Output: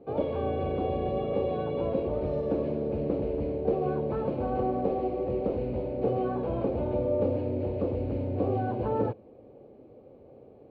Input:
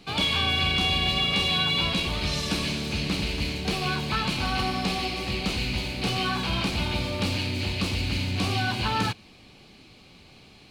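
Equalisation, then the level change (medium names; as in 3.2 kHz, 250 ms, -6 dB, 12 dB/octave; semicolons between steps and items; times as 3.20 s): high-pass 120 Hz 6 dB/octave; resonant low-pass 520 Hz, resonance Q 4.9; peaking EQ 180 Hz -10.5 dB 0.3 oct; 0.0 dB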